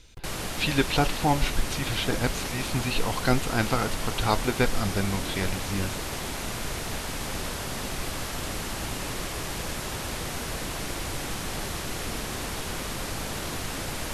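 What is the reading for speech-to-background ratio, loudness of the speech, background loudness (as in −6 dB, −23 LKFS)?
3.5 dB, −28.5 LKFS, −32.0 LKFS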